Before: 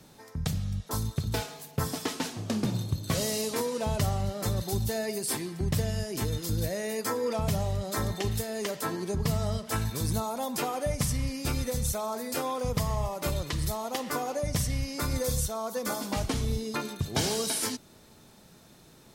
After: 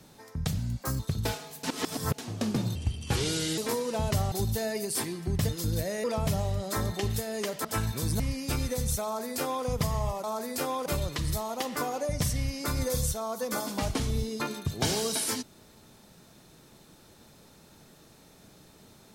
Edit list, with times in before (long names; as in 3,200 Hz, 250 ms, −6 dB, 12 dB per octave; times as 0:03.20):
0:00.58–0:01.08: play speed 121%
0:01.72–0:02.27: reverse
0:02.84–0:03.45: play speed 74%
0:04.19–0:04.65: remove
0:05.82–0:06.34: remove
0:06.89–0:07.25: remove
0:08.86–0:09.63: remove
0:10.18–0:11.16: remove
0:12.00–0:12.62: duplicate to 0:13.20